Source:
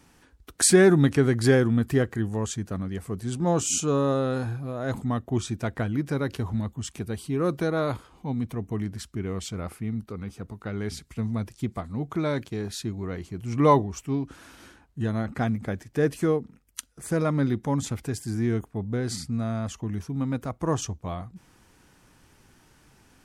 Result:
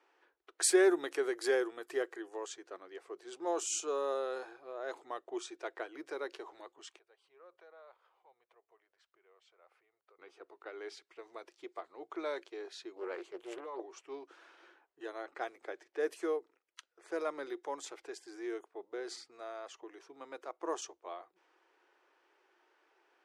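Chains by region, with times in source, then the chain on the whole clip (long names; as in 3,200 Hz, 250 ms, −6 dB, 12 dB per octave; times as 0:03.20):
0:06.96–0:10.19: drawn EQ curve 100 Hz 0 dB, 290 Hz −25 dB, 530 Hz −6 dB + downward compressor 2.5 to 1, threshold −51 dBFS
0:12.96–0:13.80: parametric band 5,200 Hz −9.5 dB 0.29 octaves + compressor whose output falls as the input rises −27 dBFS + highs frequency-modulated by the lows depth 0.68 ms
whole clip: low-pass that shuts in the quiet parts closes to 2,800 Hz, open at −18.5 dBFS; elliptic high-pass filter 350 Hz, stop band 40 dB; level −8 dB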